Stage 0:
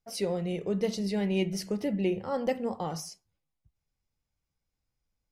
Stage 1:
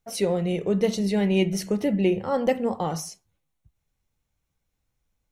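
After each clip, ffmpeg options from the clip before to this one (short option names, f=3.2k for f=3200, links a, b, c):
-af "bandreject=f=4.9k:w=5.9,volume=6.5dB"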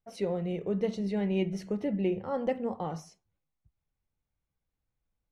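-af "aemphasis=mode=reproduction:type=75fm,volume=-8dB"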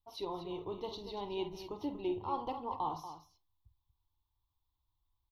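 -af "firequalizer=gain_entry='entry(100,0);entry(200,-25);entry(300,-4);entry(520,-18);entry(990,9);entry(1600,-26);entry(3500,5);entry(8300,-24);entry(12000,1)':delay=0.05:min_phase=1,aecho=1:1:49.56|236.2:0.282|0.282,volume=2dB"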